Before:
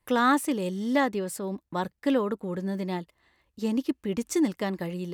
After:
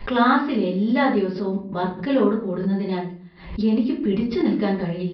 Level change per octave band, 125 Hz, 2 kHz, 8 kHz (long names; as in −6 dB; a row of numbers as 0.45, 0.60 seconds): +8.0 dB, +4.5 dB, below −25 dB